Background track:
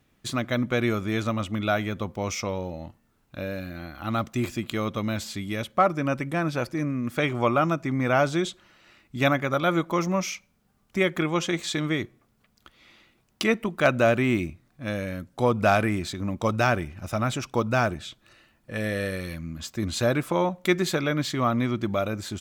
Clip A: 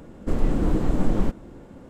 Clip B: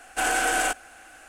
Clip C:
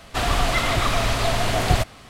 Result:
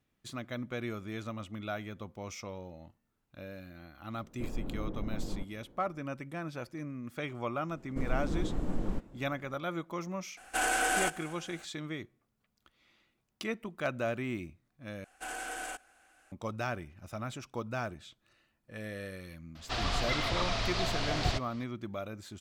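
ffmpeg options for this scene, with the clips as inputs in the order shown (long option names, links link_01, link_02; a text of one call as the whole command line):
ffmpeg -i bed.wav -i cue0.wav -i cue1.wav -i cue2.wav -filter_complex "[1:a]asplit=2[link_01][link_02];[2:a]asplit=2[link_03][link_04];[0:a]volume=-13dB[link_05];[link_01]lowpass=1300[link_06];[link_03]aecho=1:1:243:0.0891[link_07];[3:a]lowpass=frequency=5000:width_type=q:width=2[link_08];[link_05]asplit=2[link_09][link_10];[link_09]atrim=end=15.044[link_11];[link_04]atrim=end=1.28,asetpts=PTS-STARTPTS,volume=-16dB[link_12];[link_10]atrim=start=16.316[link_13];[link_06]atrim=end=1.89,asetpts=PTS-STARTPTS,volume=-16dB,afade=type=in:duration=0.004:curve=hsin,afade=type=out:start_time=1.886:duration=0.004:curve=hsin,adelay=182133S[link_14];[link_02]atrim=end=1.89,asetpts=PTS-STARTPTS,volume=-11.5dB,afade=type=in:duration=0.004:curve=hsin,afade=type=out:start_time=1.886:duration=0.004:curve=hsin,adelay=7690[link_15];[link_07]atrim=end=1.28,asetpts=PTS-STARTPTS,volume=-5.5dB,afade=type=in:duration=0.004:curve=hsin,afade=type=out:start_time=1.276:duration=0.004:curve=hsin,adelay=10370[link_16];[link_08]atrim=end=2.09,asetpts=PTS-STARTPTS,volume=-12dB,afade=type=in:duration=0.004:curve=hsin,afade=type=out:start_time=2.086:duration=0.004:curve=hsin,adelay=19550[link_17];[link_11][link_12]acrossfade=duration=0.004:curve1=hsin:curve2=hsin[link_18];[link_18][link_13]acrossfade=duration=0.004:curve1=hsin:curve2=hsin[link_19];[link_19][link_14][link_15][link_16][link_17]amix=inputs=5:normalize=0" out.wav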